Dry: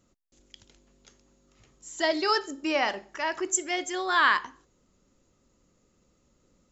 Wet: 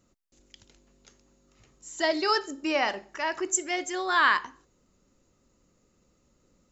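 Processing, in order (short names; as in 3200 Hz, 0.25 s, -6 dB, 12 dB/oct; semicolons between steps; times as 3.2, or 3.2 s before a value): notch 3300 Hz, Q 19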